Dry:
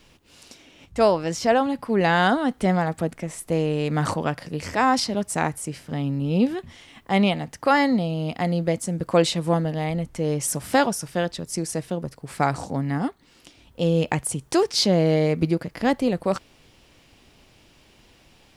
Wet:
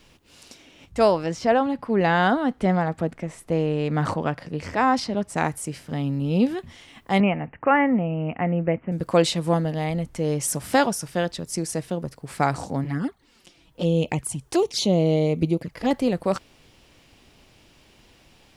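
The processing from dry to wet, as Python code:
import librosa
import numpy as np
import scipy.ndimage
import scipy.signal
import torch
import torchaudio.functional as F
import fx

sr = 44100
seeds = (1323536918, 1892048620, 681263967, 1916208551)

y = fx.lowpass(x, sr, hz=2800.0, slope=6, at=(1.26, 5.37))
y = fx.steep_lowpass(y, sr, hz=2800.0, slope=96, at=(7.2, 8.92))
y = fx.env_flanger(y, sr, rest_ms=7.0, full_db=-18.5, at=(12.84, 15.91))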